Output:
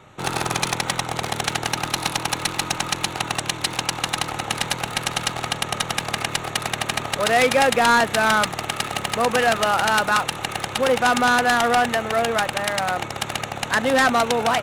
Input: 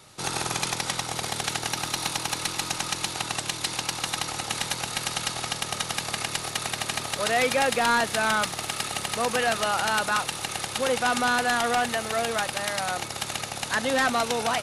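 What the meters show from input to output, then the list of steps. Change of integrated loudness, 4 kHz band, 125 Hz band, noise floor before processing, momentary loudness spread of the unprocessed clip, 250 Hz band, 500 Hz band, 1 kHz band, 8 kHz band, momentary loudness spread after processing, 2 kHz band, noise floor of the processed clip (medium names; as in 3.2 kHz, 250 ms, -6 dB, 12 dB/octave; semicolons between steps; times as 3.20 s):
+5.0 dB, +3.5 dB, +6.5 dB, -36 dBFS, 6 LU, +6.5 dB, +6.5 dB, +6.0 dB, +1.5 dB, 8 LU, +5.5 dB, -33 dBFS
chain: local Wiener filter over 9 samples; trim +6.5 dB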